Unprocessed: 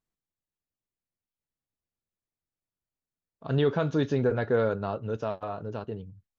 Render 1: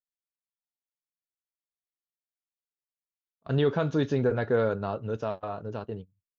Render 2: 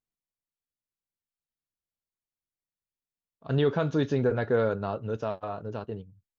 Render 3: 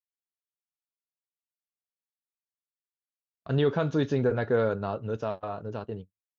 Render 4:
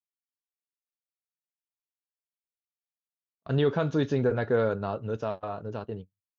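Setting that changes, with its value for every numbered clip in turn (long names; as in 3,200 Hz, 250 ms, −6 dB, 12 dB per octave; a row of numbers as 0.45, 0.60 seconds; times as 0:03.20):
noise gate, range: −24, −7, −56, −40 decibels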